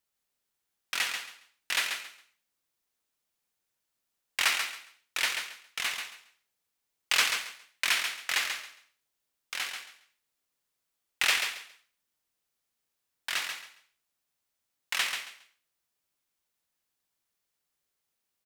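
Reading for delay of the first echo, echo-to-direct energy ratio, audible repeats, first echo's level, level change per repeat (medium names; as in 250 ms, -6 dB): 137 ms, -6.5 dB, 3, -6.5 dB, -13.0 dB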